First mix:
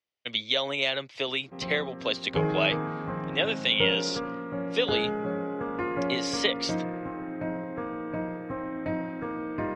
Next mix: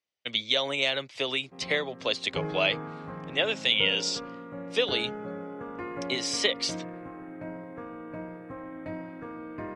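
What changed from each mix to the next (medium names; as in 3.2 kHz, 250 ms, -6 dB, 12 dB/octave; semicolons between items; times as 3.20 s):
background -6.5 dB; master: add peaking EQ 9 kHz +9.5 dB 0.82 oct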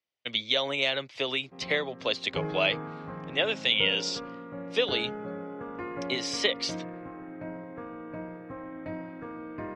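master: add peaking EQ 9 kHz -9.5 dB 0.82 oct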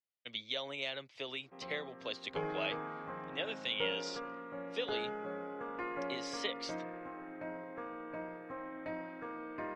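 speech -12.0 dB; background: add peaking EQ 98 Hz -14.5 dB 2.9 oct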